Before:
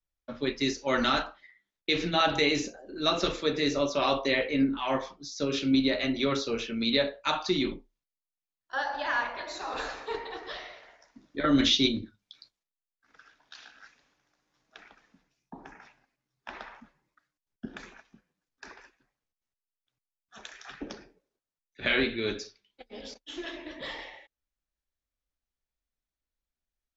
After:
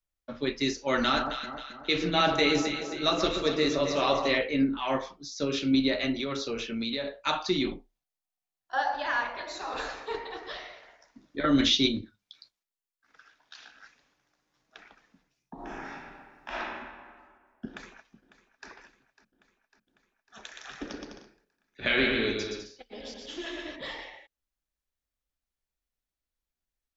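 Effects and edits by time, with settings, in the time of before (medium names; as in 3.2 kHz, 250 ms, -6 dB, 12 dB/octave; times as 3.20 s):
1.03–4.38 s: echo whose repeats swap between lows and highs 134 ms, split 1.3 kHz, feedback 68%, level -5 dB
6.13–7.16 s: compression 5:1, threshold -28 dBFS
7.67–8.94 s: peaking EQ 740 Hz +12 dB 0.24 oct
12.01–13.60 s: bass shelf 470 Hz -5 dB
15.54–16.57 s: reverb throw, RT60 1.8 s, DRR -10 dB
17.67–18.69 s: echo throw 550 ms, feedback 70%, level -16.5 dB
20.44–23.76 s: bouncing-ball echo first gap 120 ms, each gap 0.7×, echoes 5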